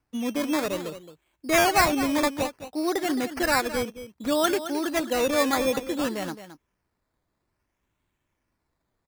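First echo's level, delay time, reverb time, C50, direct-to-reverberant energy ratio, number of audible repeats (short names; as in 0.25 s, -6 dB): -12.0 dB, 0.217 s, none, none, none, 1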